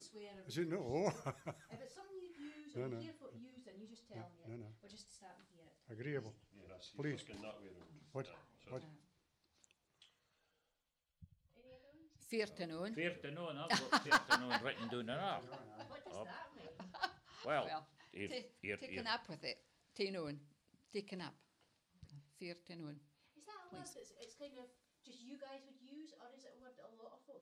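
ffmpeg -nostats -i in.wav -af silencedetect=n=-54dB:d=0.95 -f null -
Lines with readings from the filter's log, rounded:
silence_start: 10.04
silence_end: 11.23 | silence_duration: 1.18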